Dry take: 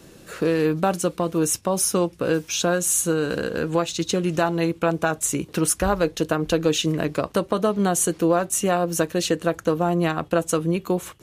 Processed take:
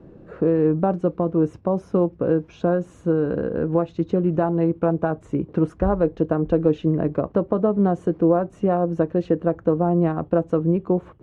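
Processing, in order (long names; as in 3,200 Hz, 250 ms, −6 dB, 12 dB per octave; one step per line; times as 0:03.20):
Bessel low-pass filter 620 Hz, order 2
level +3.5 dB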